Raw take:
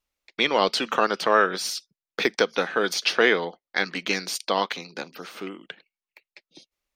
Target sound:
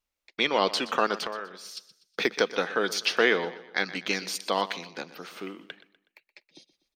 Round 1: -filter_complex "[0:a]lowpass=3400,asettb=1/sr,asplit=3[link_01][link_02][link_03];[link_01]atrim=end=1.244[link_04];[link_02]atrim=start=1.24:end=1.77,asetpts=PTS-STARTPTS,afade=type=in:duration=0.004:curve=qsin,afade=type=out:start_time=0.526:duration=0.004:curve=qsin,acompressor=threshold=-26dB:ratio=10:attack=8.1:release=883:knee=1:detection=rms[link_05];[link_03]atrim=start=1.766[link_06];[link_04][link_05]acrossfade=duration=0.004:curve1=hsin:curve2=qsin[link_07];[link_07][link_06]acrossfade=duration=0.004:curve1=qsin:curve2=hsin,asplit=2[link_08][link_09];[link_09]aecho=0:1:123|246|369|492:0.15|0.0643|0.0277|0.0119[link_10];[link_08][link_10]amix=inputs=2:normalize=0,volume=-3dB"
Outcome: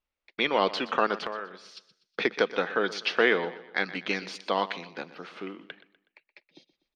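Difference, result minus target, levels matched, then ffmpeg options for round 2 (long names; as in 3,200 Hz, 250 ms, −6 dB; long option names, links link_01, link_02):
4,000 Hz band −3.0 dB
-filter_complex "[0:a]asettb=1/sr,asplit=3[link_01][link_02][link_03];[link_01]atrim=end=1.244[link_04];[link_02]atrim=start=1.24:end=1.77,asetpts=PTS-STARTPTS,afade=type=in:duration=0.004:curve=qsin,afade=type=out:start_time=0.526:duration=0.004:curve=qsin,acompressor=threshold=-26dB:ratio=10:attack=8.1:release=883:knee=1:detection=rms[link_05];[link_03]atrim=start=1.766[link_06];[link_04][link_05]acrossfade=duration=0.004:curve1=hsin:curve2=qsin[link_07];[link_07][link_06]acrossfade=duration=0.004:curve1=qsin:curve2=hsin,asplit=2[link_08][link_09];[link_09]aecho=0:1:123|246|369|492:0.15|0.0643|0.0277|0.0119[link_10];[link_08][link_10]amix=inputs=2:normalize=0,volume=-3dB"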